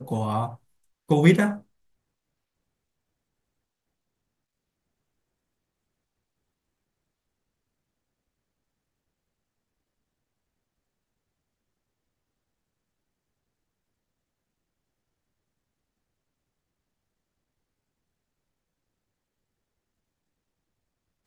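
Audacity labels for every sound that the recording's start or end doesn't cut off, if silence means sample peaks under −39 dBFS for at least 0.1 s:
1.090000	1.590000	sound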